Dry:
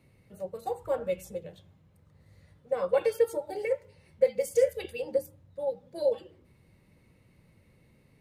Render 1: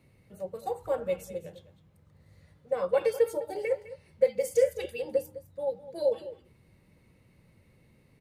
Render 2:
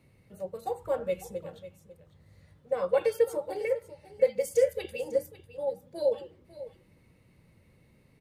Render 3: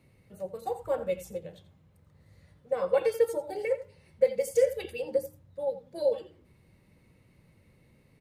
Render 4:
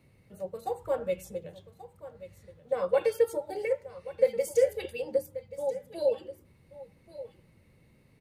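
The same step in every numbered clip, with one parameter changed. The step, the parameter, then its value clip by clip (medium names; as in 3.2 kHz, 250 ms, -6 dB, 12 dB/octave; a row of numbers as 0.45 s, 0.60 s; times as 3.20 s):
delay, time: 206 ms, 548 ms, 85 ms, 1132 ms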